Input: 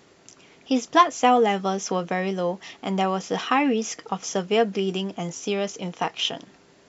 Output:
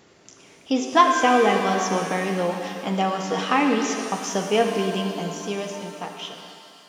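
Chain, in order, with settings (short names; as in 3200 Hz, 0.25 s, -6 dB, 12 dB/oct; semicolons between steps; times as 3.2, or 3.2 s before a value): ending faded out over 2.21 s; shimmer reverb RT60 2.4 s, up +7 st, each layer -8 dB, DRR 3.5 dB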